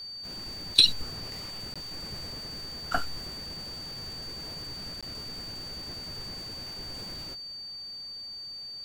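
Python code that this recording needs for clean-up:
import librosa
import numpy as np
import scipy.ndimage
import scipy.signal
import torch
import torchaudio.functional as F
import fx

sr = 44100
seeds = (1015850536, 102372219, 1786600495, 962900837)

y = fx.notch(x, sr, hz=4600.0, q=30.0)
y = fx.fix_interpolate(y, sr, at_s=(1.74, 5.01), length_ms=16.0)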